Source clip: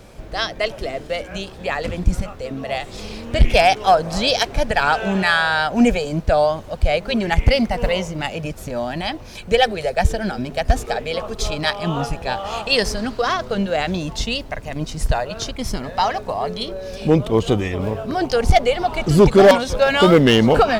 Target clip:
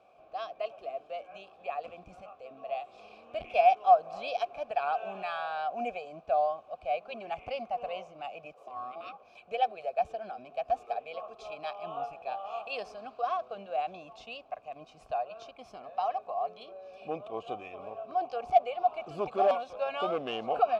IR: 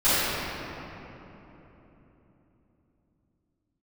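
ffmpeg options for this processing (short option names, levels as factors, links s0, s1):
-filter_complex "[0:a]asettb=1/sr,asplit=3[s0][s1][s2];[s0]atrim=end=8.544[s3];[s1]atrim=start=8.54:end=9.23,asetpts=PTS-STARTPTS,afade=t=in:d=0.004:c=qsin,afade=t=out:st=0.686:d=0.004:c=qsin,aeval=exprs='val(0)*sin(2*PI*500*n/s)':c=same[s4];[s2]atrim=start=9.226[s5];[s3][s4]acrossfade=d=0.004:c1=hsin:c2=qsin[s6];[s6][s5]acrossfade=d=0.004:c1=qsin:c2=hsin,asplit=3[s7][s8][s9];[s7]bandpass=f=730:t=q:w=8,volume=1[s10];[s8]bandpass=f=1090:t=q:w=8,volume=0.501[s11];[s9]bandpass=f=2440:t=q:w=8,volume=0.355[s12];[s10][s11][s12]amix=inputs=3:normalize=0,volume=0.562"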